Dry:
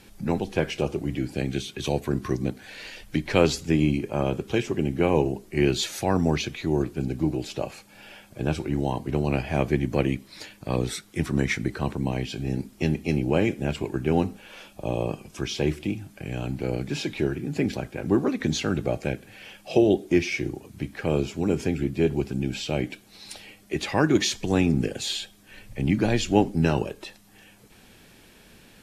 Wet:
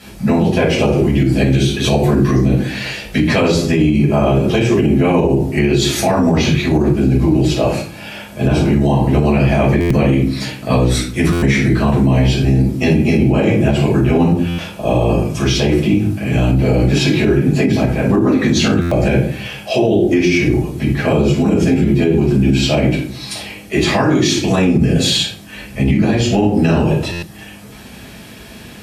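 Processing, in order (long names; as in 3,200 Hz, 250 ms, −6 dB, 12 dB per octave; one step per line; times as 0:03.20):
rectangular room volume 400 cubic metres, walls furnished, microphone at 6.5 metres
downward compressor 6 to 1, threshold −13 dBFS, peak gain reduction 9.5 dB
high-pass filter 55 Hz 24 dB per octave
brickwall limiter −11 dBFS, peak gain reduction 6 dB
buffer that repeats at 0:09.80/0:11.32/0:14.48/0:18.81/0:27.12, samples 512, times 8
level +6.5 dB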